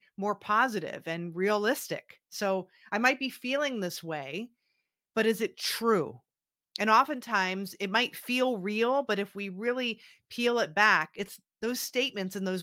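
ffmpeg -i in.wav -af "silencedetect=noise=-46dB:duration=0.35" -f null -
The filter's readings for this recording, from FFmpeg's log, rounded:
silence_start: 4.46
silence_end: 5.16 | silence_duration: 0.70
silence_start: 6.16
silence_end: 6.76 | silence_duration: 0.59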